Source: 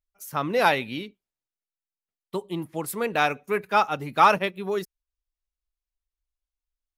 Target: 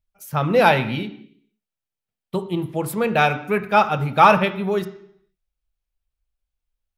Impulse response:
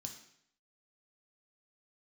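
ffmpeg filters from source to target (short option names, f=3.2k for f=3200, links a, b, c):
-filter_complex "[0:a]asplit=2[a][b];[1:a]atrim=start_sample=2205,lowpass=3k,lowshelf=f=210:g=4.5[c];[b][c]afir=irnorm=-1:irlink=0,volume=3.5dB[d];[a][d]amix=inputs=2:normalize=0,volume=1dB"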